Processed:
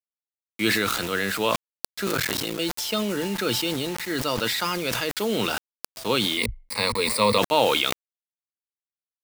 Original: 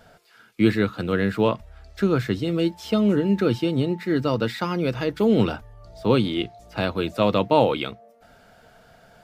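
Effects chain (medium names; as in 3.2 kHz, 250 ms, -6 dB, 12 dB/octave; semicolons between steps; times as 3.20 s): 2.06–2.59 s: cycle switcher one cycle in 3, muted; tilt EQ +4 dB/octave; bit crusher 6-bit; 6.37–7.38 s: rippled EQ curve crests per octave 0.93, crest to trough 16 dB; decay stretcher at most 24 dB/s; trim -1 dB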